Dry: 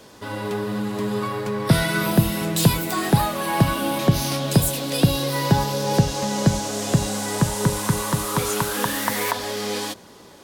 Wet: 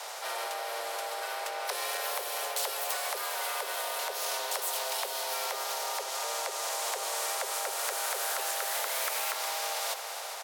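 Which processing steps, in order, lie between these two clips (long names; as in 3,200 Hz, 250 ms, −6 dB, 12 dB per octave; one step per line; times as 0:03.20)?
high-pass filter 180 Hz 12 dB per octave
parametric band 380 Hz +9 dB 1.6 octaves
downward compressor 16 to 1, threshold −24 dBFS, peak gain reduction 17 dB
transient designer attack −6 dB, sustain −2 dB
frequency shifter +380 Hz
echo machine with several playback heads 135 ms, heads second and third, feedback 54%, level −17.5 dB
flanger 0.62 Hz, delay 7.3 ms, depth 5.8 ms, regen +84%
pitch-shifted copies added −4 semitones −9 dB
every bin compressed towards the loudest bin 2 to 1
level +3.5 dB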